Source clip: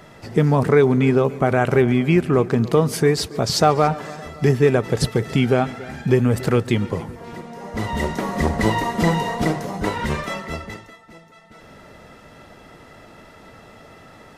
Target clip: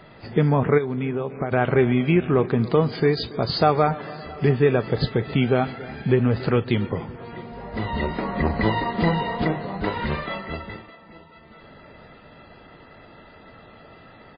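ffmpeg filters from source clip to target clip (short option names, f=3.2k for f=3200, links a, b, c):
-filter_complex "[0:a]asplit=3[a][b][c];[a]afade=t=out:st=0.77:d=0.02[d];[b]acompressor=threshold=-20dB:ratio=8,afade=t=in:st=0.77:d=0.02,afade=t=out:st=1.51:d=0.02[e];[c]afade=t=in:st=1.51:d=0.02[f];[d][e][f]amix=inputs=3:normalize=0,asettb=1/sr,asplit=3[g][h][i];[g]atrim=end=2.924[j];[h]atrim=start=2.92:end=3.4,asetpts=PTS-STARTPTS,afade=t=in:d=0.004:c=qsin,afade=t=out:st=0.476:d=0.004:c=qsin,equalizer=f=99:t=o:w=0.46:g=-4.5[k];[i]atrim=start=3.396[l];[j][k]acrossfade=d=0.004:c1=hsin:c2=qsin[m];[m][l]acrossfade=d=0.004:c1=qsin:c2=hsin,asettb=1/sr,asplit=3[n][o][p];[n]atrim=end=7.524[q];[o]atrim=start=7.52:end=8.63,asetpts=PTS-STARTPTS,afade=t=in:d=0.004:c=qsin,afade=t=out:st=1.106:d=0.004:c=qsin,aeval=exprs='val(0)+0.01*(sin(2*PI*50*n/s)+sin(2*PI*2*50*n/s)/2+sin(2*PI*3*50*n/s)/3+sin(2*PI*4*50*n/s)/4+sin(2*PI*5*50*n/s)/5)':c=same[r];[p]atrim=start=8.626[s];[q][r]acrossfade=d=0.004:c1=hsin:c2=qsin[t];[t][s]acrossfade=d=0.004:c1=qsin:c2=hsin,acrusher=bits=10:mix=0:aa=0.000001,aecho=1:1:666|1332|1998:0.0668|0.0321|0.0154,volume=-2dB" -ar 11025 -c:a libmp3lame -b:a 16k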